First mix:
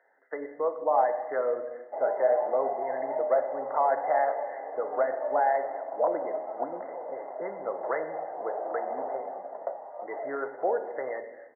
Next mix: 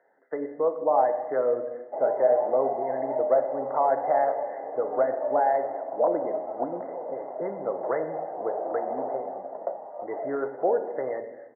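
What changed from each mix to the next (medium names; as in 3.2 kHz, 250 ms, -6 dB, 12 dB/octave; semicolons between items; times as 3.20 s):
master: add tilt EQ -4 dB/octave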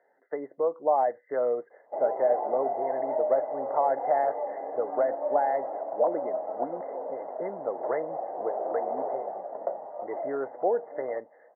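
reverb: off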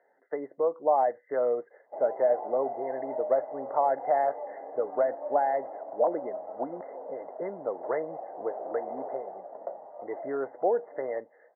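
background -6.0 dB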